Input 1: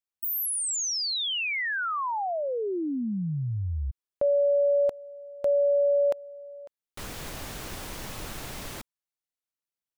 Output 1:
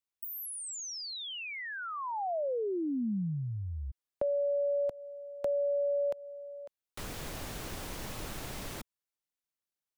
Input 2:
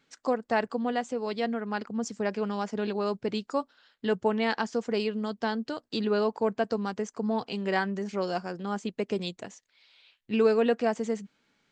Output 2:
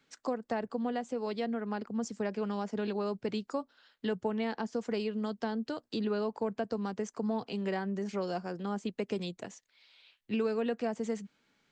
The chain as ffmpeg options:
-filter_complex "[0:a]acrossover=split=190|730[a][b][c];[a]acompressor=threshold=-36dB:ratio=4[d];[b]acompressor=threshold=-31dB:ratio=4[e];[c]acompressor=threshold=-40dB:ratio=4[f];[d][e][f]amix=inputs=3:normalize=0,volume=-1.5dB"

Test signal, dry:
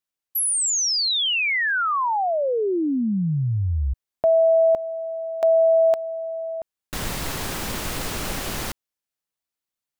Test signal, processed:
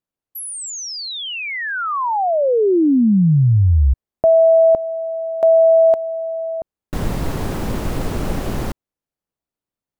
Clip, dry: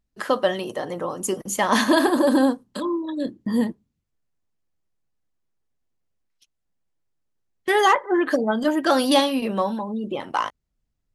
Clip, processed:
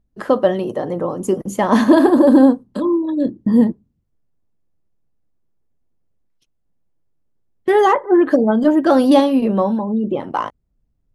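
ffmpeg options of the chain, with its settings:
-af "tiltshelf=f=1.1k:g=8.5,volume=1.5dB"

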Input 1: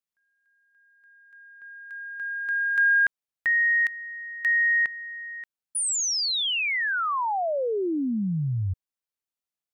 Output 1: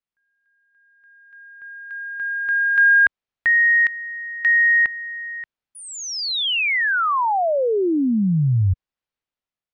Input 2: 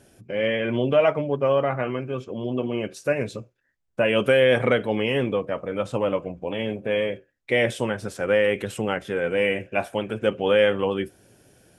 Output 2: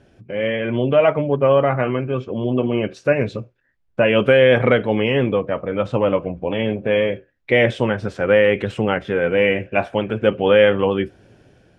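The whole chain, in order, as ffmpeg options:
-af "lowpass=3.6k,lowshelf=f=110:g=5.5,dynaudnorm=f=710:g=3:m=5dB,volume=1.5dB"

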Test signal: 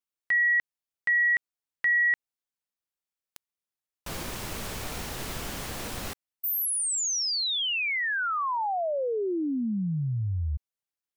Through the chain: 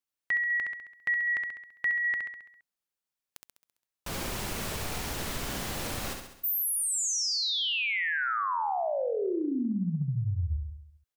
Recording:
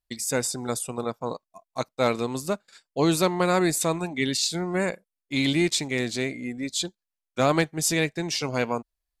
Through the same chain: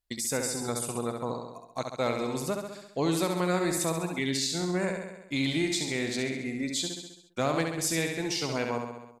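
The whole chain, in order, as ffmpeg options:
-af "aecho=1:1:67|134|201|268|335|402|469:0.531|0.292|0.161|0.0883|0.0486|0.0267|0.0147,acompressor=threshold=-26dB:ratio=2:attack=0.95:release=811:knee=1:detection=peak"

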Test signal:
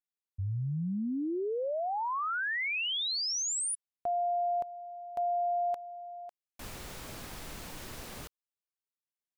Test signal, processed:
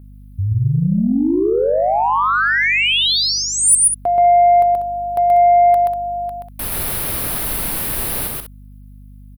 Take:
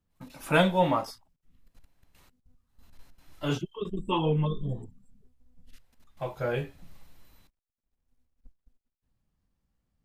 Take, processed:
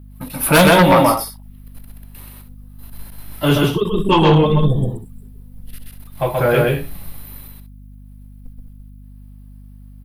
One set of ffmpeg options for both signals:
-filter_complex "[0:a]firequalizer=gain_entry='entry(4100,0);entry(7000,-9);entry(10000,13)':delay=0.05:min_phase=1,asplit=2[a][b];[b]aecho=0:1:128.3|192.4:0.794|0.282[c];[a][c]amix=inputs=2:normalize=0,aeval=exprs='0.355*sin(PI/2*2.51*val(0)/0.355)':c=same,aeval=exprs='val(0)+0.00891*(sin(2*PI*50*n/s)+sin(2*PI*2*50*n/s)/2+sin(2*PI*3*50*n/s)/3+sin(2*PI*4*50*n/s)/4+sin(2*PI*5*50*n/s)/5)':c=same,volume=3dB"

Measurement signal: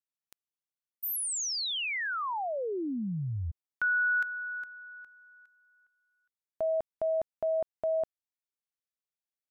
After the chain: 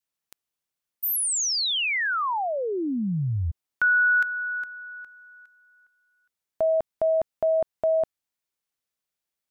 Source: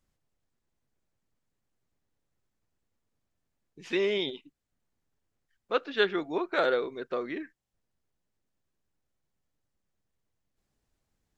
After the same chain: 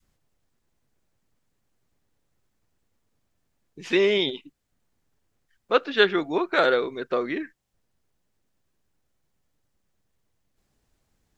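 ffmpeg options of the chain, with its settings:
-af "adynamicequalizer=threshold=0.0112:dfrequency=530:dqfactor=0.74:tfrequency=530:tqfactor=0.74:attack=5:release=100:ratio=0.375:range=1.5:mode=cutabove:tftype=bell,volume=7.5dB"

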